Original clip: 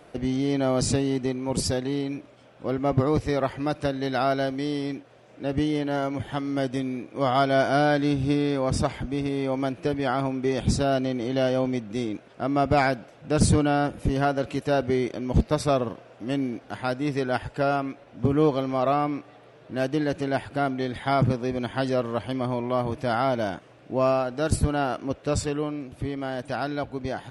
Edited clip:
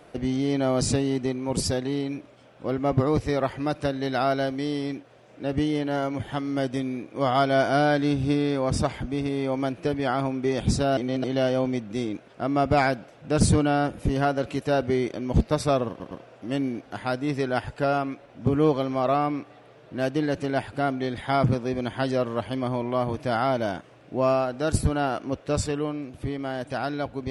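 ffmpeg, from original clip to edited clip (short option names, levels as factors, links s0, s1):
-filter_complex "[0:a]asplit=5[s0][s1][s2][s3][s4];[s0]atrim=end=10.972[s5];[s1]atrim=start=10.968:end=11.242,asetpts=PTS-STARTPTS,areverse[s6];[s2]atrim=start=11.238:end=16.002[s7];[s3]atrim=start=15.888:end=16.002[s8];[s4]atrim=start=15.888[s9];[s5][s6]acrossfade=d=0.004:c1=hsin:c2=hsin[s10];[s10][s7]acrossfade=d=0.004:c1=hsin:c2=hsin[s11];[s11][s8]acrossfade=d=0.004:c1=hsin:c2=hsin[s12];[s12][s9]acrossfade=d=0.004:c1=hsin:c2=hsin"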